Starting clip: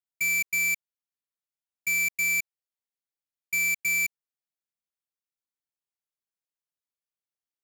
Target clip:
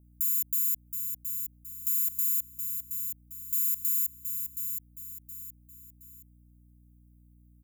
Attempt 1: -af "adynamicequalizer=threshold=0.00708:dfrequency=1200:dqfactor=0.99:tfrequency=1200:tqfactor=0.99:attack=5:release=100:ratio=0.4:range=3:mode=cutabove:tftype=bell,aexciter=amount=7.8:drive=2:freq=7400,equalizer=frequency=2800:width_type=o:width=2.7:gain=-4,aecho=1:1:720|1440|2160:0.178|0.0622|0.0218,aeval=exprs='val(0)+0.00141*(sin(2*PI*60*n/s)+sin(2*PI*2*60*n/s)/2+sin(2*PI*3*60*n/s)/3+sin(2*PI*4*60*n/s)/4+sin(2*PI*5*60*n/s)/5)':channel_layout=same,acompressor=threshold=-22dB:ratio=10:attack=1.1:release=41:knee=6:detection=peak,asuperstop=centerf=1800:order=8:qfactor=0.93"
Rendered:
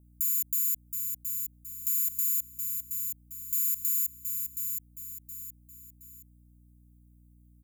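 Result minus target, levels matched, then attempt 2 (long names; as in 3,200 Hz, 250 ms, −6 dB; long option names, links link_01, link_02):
2,000 Hz band +8.0 dB
-af "adynamicequalizer=threshold=0.00708:dfrequency=1200:dqfactor=0.99:tfrequency=1200:tqfactor=0.99:attack=5:release=100:ratio=0.4:range=3:mode=cutabove:tftype=bell,aexciter=amount=7.8:drive=2:freq=7400,equalizer=frequency=2800:width_type=o:width=2.7:gain=-13,aecho=1:1:720|1440|2160:0.178|0.0622|0.0218,aeval=exprs='val(0)+0.00141*(sin(2*PI*60*n/s)+sin(2*PI*2*60*n/s)/2+sin(2*PI*3*60*n/s)/3+sin(2*PI*4*60*n/s)/4+sin(2*PI*5*60*n/s)/5)':channel_layout=same,acompressor=threshold=-22dB:ratio=10:attack=1.1:release=41:knee=6:detection=peak,asuperstop=centerf=1800:order=8:qfactor=0.93"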